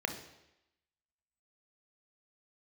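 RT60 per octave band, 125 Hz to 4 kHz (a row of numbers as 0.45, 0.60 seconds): 0.80, 0.85, 0.90, 0.90, 0.90, 0.90 seconds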